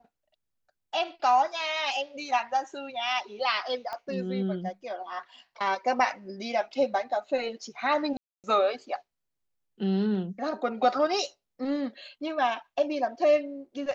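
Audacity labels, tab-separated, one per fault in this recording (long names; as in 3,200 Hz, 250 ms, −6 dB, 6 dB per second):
3.930000	3.930000	click −22 dBFS
8.170000	8.440000	drop-out 268 ms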